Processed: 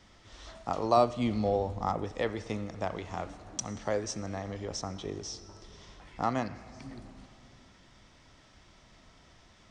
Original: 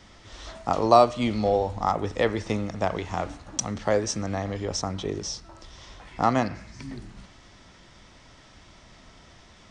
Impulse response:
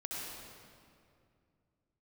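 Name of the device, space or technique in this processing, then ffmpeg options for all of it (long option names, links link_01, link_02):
compressed reverb return: -filter_complex "[0:a]asplit=2[link_01][link_02];[1:a]atrim=start_sample=2205[link_03];[link_02][link_03]afir=irnorm=-1:irlink=0,acompressor=threshold=-28dB:ratio=6,volume=-11dB[link_04];[link_01][link_04]amix=inputs=2:normalize=0,asettb=1/sr,asplit=3[link_05][link_06][link_07];[link_05]atrim=end=0.974[link_08];[link_06]atrim=start=0.97:end=2.04,asetpts=PTS-STARTPTS,afade=type=in:duration=0.004:curve=qsin,afade=type=out:start_time=1.066:duration=0.004:curve=qsin,equalizer=frequency=130:width=0.35:gain=5.5[link_09];[link_07]atrim=start=2.036[link_10];[link_08][link_09]acrossfade=duration=0.004:curve1=hsin:curve2=qsin[link_11];[link_11][link_10]acrossfade=duration=0.004:curve1=qsin:curve2=hsin,volume=-8.5dB"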